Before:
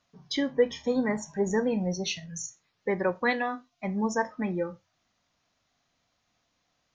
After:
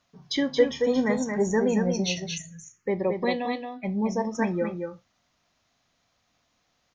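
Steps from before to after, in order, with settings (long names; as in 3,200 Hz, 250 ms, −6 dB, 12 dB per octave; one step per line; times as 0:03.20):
single-tap delay 225 ms −5.5 dB
0:02.38–0:04.35: phaser swept by the level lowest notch 550 Hz, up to 1,500 Hz, full sweep at −29.5 dBFS
level +2.5 dB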